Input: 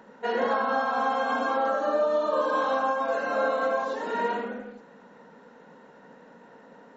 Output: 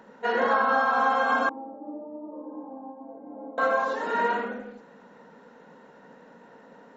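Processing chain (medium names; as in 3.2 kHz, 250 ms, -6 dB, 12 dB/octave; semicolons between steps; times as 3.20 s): 1.49–3.58 s: cascade formant filter u; dynamic bell 1.4 kHz, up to +6 dB, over -40 dBFS, Q 1.2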